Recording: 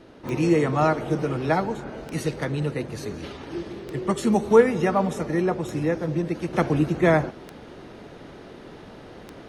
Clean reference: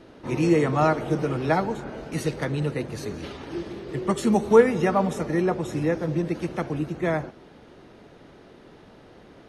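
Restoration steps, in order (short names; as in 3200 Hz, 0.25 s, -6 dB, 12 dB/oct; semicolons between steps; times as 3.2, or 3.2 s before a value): de-click; gain 0 dB, from 6.53 s -6.5 dB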